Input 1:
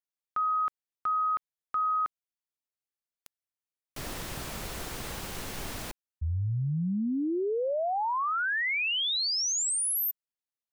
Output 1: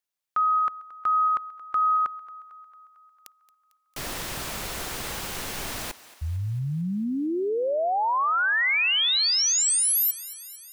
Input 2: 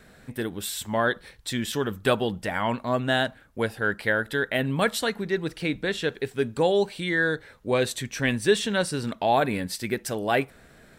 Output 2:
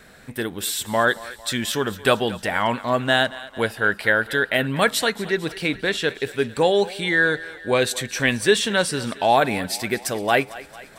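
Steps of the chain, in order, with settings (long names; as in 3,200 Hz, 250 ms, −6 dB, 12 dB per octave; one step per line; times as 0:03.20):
low-shelf EQ 480 Hz −6 dB
feedback echo with a high-pass in the loop 225 ms, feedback 64%, high-pass 370 Hz, level −17.5 dB
level +6.5 dB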